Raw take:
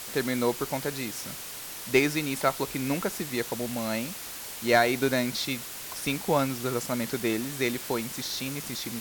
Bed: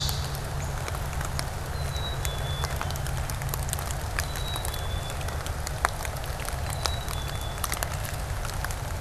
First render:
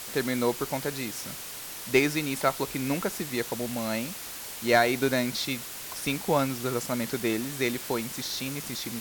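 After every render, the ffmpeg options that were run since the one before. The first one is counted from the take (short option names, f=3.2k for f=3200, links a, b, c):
-af anull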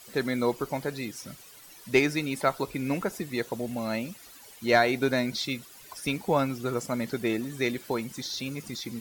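-af "afftdn=nr=14:nf=-39"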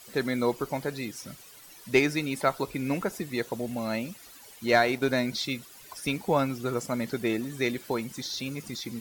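-filter_complex "[0:a]asettb=1/sr,asplit=3[a][b][c];[a]atrim=end=4.684[d];[b]atrim=start=4.68:end=5.09,asetpts=PTS-STARTPTS,afade=t=in:d=0.004:c=qsin,afade=t=out:st=0.406:d=0.004:c=qsin,aeval=exprs='sgn(val(0))*max(abs(val(0))-0.00708,0)':c=same[e];[c]atrim=start=5.086[f];[d][e]acrossfade=d=0.004:c1=hsin:c2=qsin[g];[g][f]acrossfade=d=0.004:c1=qsin:c2=hsin"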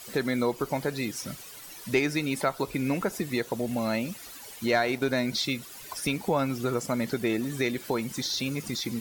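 -filter_complex "[0:a]asplit=2[a][b];[b]alimiter=limit=-20.5dB:level=0:latency=1:release=196,volume=-1dB[c];[a][c]amix=inputs=2:normalize=0,acompressor=threshold=-29dB:ratio=1.5"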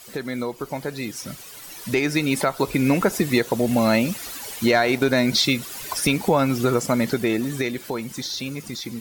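-af "alimiter=limit=-17.5dB:level=0:latency=1:release=235,dynaudnorm=f=220:g=17:m=10dB"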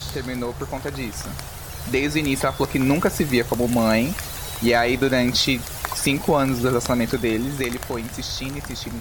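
-filter_complex "[1:a]volume=-4dB[a];[0:a][a]amix=inputs=2:normalize=0"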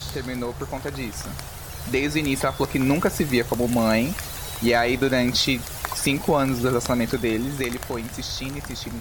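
-af "volume=-1.5dB"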